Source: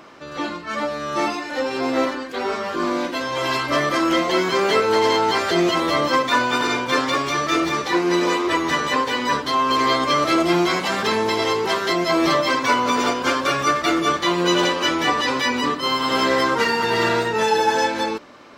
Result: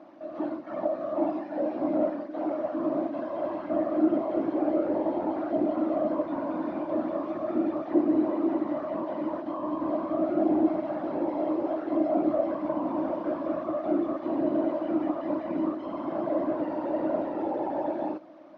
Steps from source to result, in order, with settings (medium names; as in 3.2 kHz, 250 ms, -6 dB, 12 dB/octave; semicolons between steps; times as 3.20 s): one-bit delta coder 32 kbps, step -37 dBFS; whisper effect; two resonant band-passes 440 Hz, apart 0.97 oct; trim +2.5 dB